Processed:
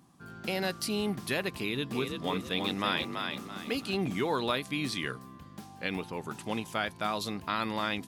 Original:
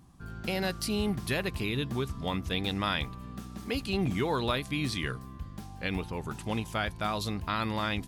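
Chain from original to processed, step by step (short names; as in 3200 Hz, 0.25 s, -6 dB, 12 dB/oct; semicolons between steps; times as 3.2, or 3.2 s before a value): HPF 180 Hz 12 dB/oct; 1.58–3.95 frequency-shifting echo 0.332 s, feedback 34%, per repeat +43 Hz, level -5 dB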